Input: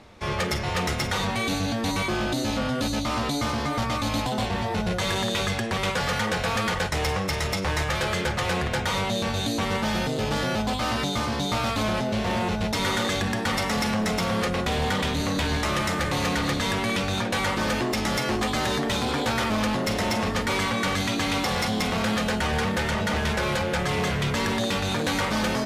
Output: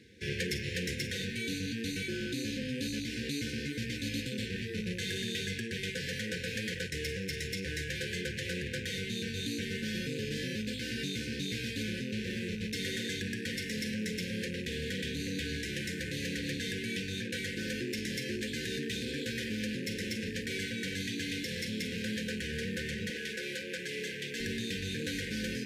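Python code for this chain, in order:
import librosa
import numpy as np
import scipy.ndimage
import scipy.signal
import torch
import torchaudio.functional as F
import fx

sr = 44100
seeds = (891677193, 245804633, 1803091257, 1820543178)

y = fx.rattle_buzz(x, sr, strikes_db=-33.0, level_db=-25.0)
y = fx.brickwall_bandstop(y, sr, low_hz=530.0, high_hz=1500.0)
y = fx.rider(y, sr, range_db=10, speed_s=2.0)
y = fx.highpass(y, sr, hz=fx.steps((0.0, 89.0), (23.1, 290.0), (24.4, 45.0)), slope=12)
y = y * 10.0 ** (-9.0 / 20.0)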